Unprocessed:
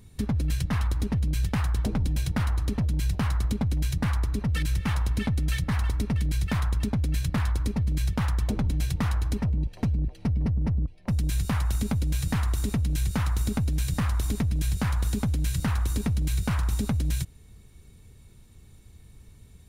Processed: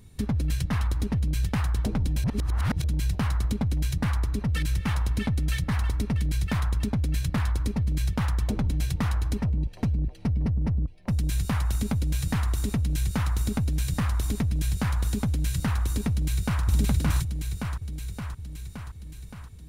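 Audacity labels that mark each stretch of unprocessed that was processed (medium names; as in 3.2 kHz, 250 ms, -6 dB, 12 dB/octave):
2.240000	2.840000	reverse
16.100000	16.630000	echo throw 570 ms, feedback 65%, level -1 dB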